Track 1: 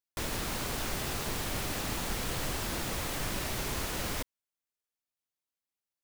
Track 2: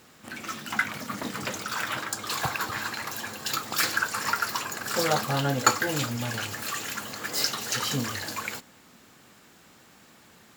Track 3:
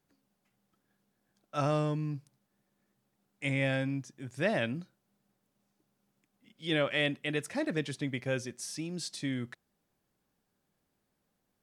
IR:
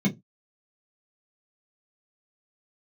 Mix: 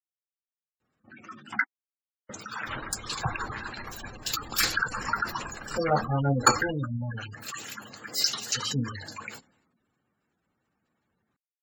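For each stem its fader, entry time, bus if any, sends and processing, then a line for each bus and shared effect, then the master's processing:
-7.0 dB, 2.50 s, no send, dry
-2.5 dB, 0.80 s, muted 1.64–2.29, no send, low shelf 140 Hz +6 dB
off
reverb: off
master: spectral gate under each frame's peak -15 dB strong; soft clip -13 dBFS, distortion -22 dB; three-band expander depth 70%

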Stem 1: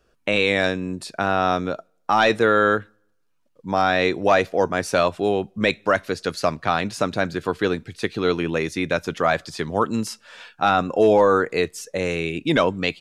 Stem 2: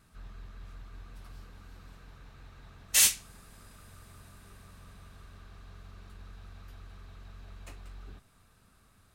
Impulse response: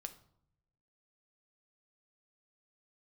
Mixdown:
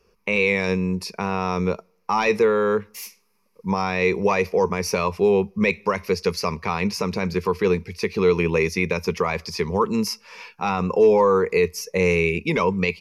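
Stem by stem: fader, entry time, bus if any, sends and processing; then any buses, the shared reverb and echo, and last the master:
+0.5 dB, 0.00 s, no send, limiter -12.5 dBFS, peak gain reduction 5.5 dB
-17.0 dB, 0.00 s, no send, steep high-pass 200 Hz 72 dB/oct; expander -55 dBFS; vibrato 3.1 Hz 78 cents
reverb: off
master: ripple EQ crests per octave 0.83, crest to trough 14 dB

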